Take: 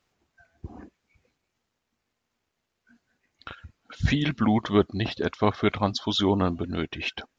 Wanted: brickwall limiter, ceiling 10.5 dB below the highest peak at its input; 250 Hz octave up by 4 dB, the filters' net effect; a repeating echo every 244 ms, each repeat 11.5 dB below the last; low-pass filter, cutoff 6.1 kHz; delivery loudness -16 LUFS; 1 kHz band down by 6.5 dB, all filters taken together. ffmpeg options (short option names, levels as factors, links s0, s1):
-af "lowpass=6100,equalizer=f=250:t=o:g=5.5,equalizer=f=1000:t=o:g=-9,alimiter=limit=0.15:level=0:latency=1,aecho=1:1:244|488|732:0.266|0.0718|0.0194,volume=3.55"